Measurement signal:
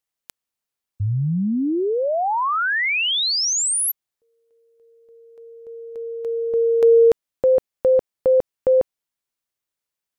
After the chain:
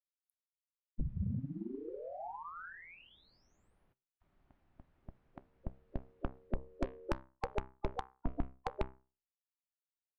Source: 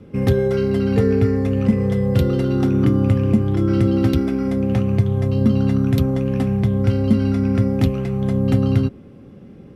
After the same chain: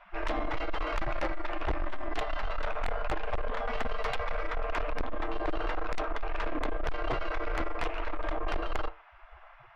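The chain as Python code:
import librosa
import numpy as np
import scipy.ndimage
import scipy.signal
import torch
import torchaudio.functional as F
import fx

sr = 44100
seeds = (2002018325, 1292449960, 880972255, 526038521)

p1 = scipy.signal.sosfilt(scipy.signal.butter(2, 2300.0, 'lowpass', fs=sr, output='sos'), x)
p2 = fx.spec_gate(p1, sr, threshold_db=-30, keep='weak')
p3 = fx.tilt_eq(p2, sr, slope=-4.5)
p4 = fx.rider(p3, sr, range_db=4, speed_s=0.5)
p5 = p3 + (p4 * 10.0 ** (-1.0 / 20.0))
p6 = fx.fold_sine(p5, sr, drive_db=7, ceiling_db=-11.5)
p7 = fx.comb_fb(p6, sr, f0_hz=65.0, decay_s=0.35, harmonics='all', damping=0.5, mix_pct=40)
y = 10.0 ** (-25.0 / 20.0) * np.tanh(p7 / 10.0 ** (-25.0 / 20.0))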